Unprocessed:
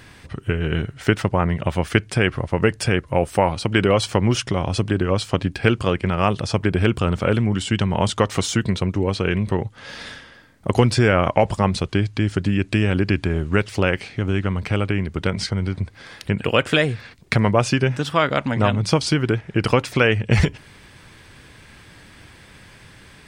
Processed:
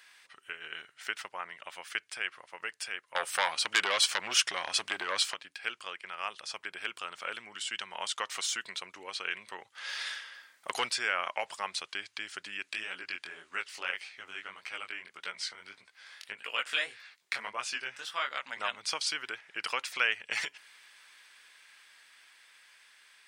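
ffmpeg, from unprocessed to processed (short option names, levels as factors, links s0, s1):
-filter_complex "[0:a]asettb=1/sr,asplit=3[s0][s1][s2];[s0]atrim=end=3.154[s3];[s1]atrim=start=3.15:end=5.34,asetpts=PTS-STARTPTS,afade=t=in:d=0.004:c=qsin,afade=t=out:st=2.186:d=0.004:c=qsin,aeval=exprs='0.794*sin(PI/2*2.82*val(0)/0.794)':c=same[s4];[s2]atrim=start=5.336[s5];[s3][s4]acrossfade=d=0.004:c1=hsin:c2=qsin[s6];[s6][s5]acrossfade=d=0.004:c1=qsin:c2=hsin,asettb=1/sr,asplit=3[s7][s8][s9];[s7]atrim=end=9.754[s10];[s8]atrim=start=9.75:end=10.89,asetpts=PTS-STARTPTS,afade=t=in:d=0.004:c=qsin,afade=t=out:st=1.136:d=0.004:c=qsin,acontrast=51[s11];[s9]atrim=start=10.886[s12];[s10][s11]acrossfade=d=0.004:c1=hsin:c2=qsin[s13];[s13][s12]acrossfade=d=0.004:c1=qsin:c2=hsin,asplit=3[s14][s15][s16];[s14]afade=t=out:st=12.72:d=0.02[s17];[s15]flanger=delay=15.5:depth=7.9:speed=1.7,afade=t=in:st=12.72:d=0.02,afade=t=out:st=18.51:d=0.02[s18];[s16]afade=t=in:st=18.51:d=0.02[s19];[s17][s18][s19]amix=inputs=3:normalize=0,highpass=1400,dynaudnorm=f=330:g=13:m=1.41,volume=0.376"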